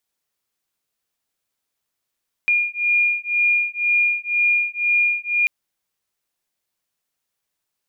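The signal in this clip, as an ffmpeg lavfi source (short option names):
-f lavfi -i "aevalsrc='0.106*(sin(2*PI*2420*t)+sin(2*PI*2422*t))':d=2.99:s=44100"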